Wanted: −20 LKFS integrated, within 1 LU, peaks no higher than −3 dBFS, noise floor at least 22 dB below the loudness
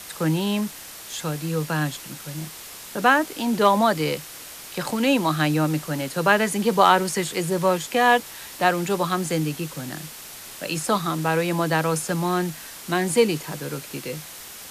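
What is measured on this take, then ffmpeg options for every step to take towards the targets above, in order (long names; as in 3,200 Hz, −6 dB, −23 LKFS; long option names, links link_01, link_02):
background noise floor −40 dBFS; target noise floor −45 dBFS; integrated loudness −23.0 LKFS; sample peak −3.5 dBFS; target loudness −20.0 LKFS
→ -af "afftdn=noise_reduction=6:noise_floor=-40"
-af "volume=3dB,alimiter=limit=-3dB:level=0:latency=1"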